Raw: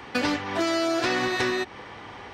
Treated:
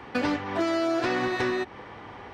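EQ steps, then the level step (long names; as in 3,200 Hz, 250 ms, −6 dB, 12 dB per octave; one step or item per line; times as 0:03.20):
high-shelf EQ 2,700 Hz −10.5 dB
0.0 dB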